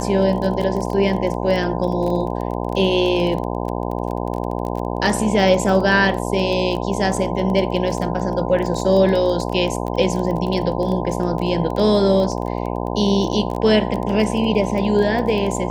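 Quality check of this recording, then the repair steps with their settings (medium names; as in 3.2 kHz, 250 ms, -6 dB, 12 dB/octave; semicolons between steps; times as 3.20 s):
buzz 60 Hz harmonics 17 -24 dBFS
crackle 20 per s -24 dBFS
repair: de-click; de-hum 60 Hz, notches 17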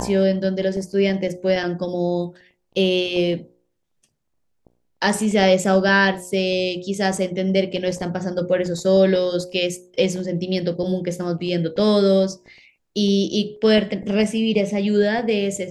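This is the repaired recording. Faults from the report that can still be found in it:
nothing left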